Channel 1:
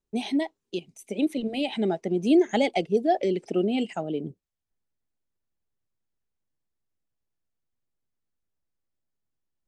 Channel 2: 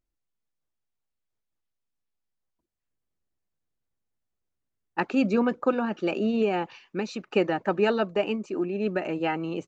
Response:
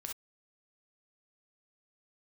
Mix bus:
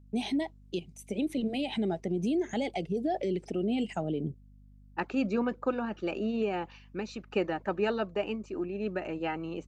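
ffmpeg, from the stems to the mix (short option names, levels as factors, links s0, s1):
-filter_complex "[0:a]equalizer=f=120:t=o:w=1.6:g=7,alimiter=limit=0.0891:level=0:latency=1:release=63,volume=0.794[s0];[1:a]aeval=exprs='val(0)+0.00398*(sin(2*PI*50*n/s)+sin(2*PI*2*50*n/s)/2+sin(2*PI*3*50*n/s)/3+sin(2*PI*4*50*n/s)/4+sin(2*PI*5*50*n/s)/5)':c=same,volume=0.501[s1];[s0][s1]amix=inputs=2:normalize=0"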